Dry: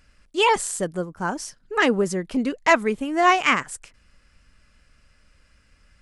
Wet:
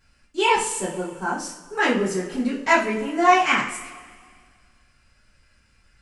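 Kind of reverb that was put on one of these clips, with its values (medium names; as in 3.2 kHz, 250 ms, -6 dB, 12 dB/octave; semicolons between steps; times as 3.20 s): two-slope reverb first 0.39 s, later 1.9 s, from -18 dB, DRR -8.5 dB; trim -9 dB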